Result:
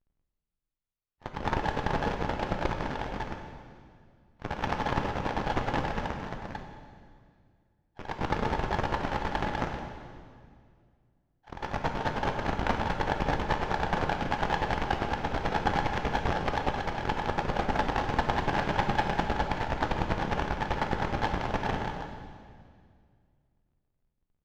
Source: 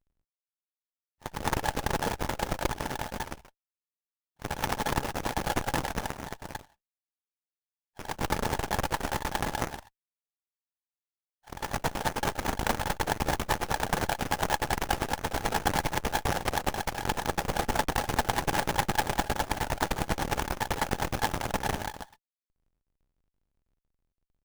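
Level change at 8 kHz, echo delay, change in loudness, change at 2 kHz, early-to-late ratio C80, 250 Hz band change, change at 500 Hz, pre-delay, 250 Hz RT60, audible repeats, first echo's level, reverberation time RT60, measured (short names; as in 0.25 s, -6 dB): -15.0 dB, none, 0.0 dB, -0.5 dB, 7.0 dB, +1.5 dB, +1.0 dB, 9 ms, 2.5 s, none, none, 2.0 s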